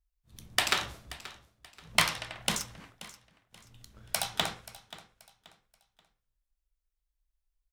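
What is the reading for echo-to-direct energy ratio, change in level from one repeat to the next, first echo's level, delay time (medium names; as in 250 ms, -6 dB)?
-17.0 dB, -9.5 dB, -17.5 dB, 531 ms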